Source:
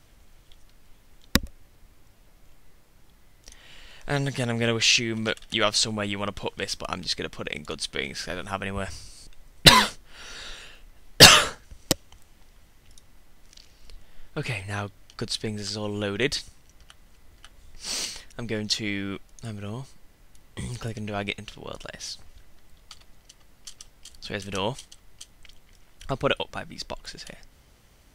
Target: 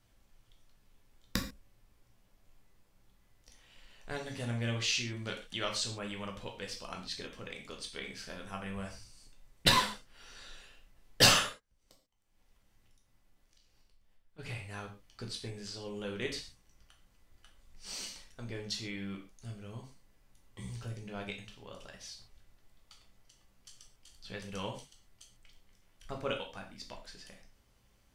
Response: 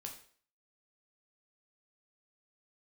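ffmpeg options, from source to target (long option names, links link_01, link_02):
-filter_complex "[0:a]asplit=3[link_01][link_02][link_03];[link_01]afade=type=out:start_time=11.44:duration=0.02[link_04];[link_02]acompressor=threshold=-50dB:ratio=10,afade=type=in:start_time=11.44:duration=0.02,afade=type=out:start_time=14.38:duration=0.02[link_05];[link_03]afade=type=in:start_time=14.38:duration=0.02[link_06];[link_04][link_05][link_06]amix=inputs=3:normalize=0[link_07];[1:a]atrim=start_sample=2205,atrim=end_sample=6615[link_08];[link_07][link_08]afir=irnorm=-1:irlink=0,volume=-8dB"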